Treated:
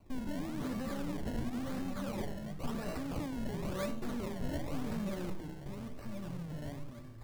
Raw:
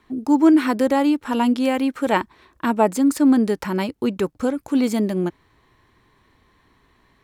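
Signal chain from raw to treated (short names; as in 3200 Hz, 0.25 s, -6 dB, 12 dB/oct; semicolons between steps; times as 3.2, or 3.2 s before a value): de-hum 79.86 Hz, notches 10; negative-ratio compressor -22 dBFS, ratio -1; tube stage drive 36 dB, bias 0.7; echoes that change speed 0.113 s, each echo -4 st, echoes 3, each echo -6 dB; resonator 580 Hz, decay 0.3 s, mix 90%; decimation with a swept rate 25×, swing 100% 0.95 Hz; low shelf 310 Hz +11.5 dB; reverb RT60 0.40 s, pre-delay 57 ms, DRR 13.5 dB; gain +9.5 dB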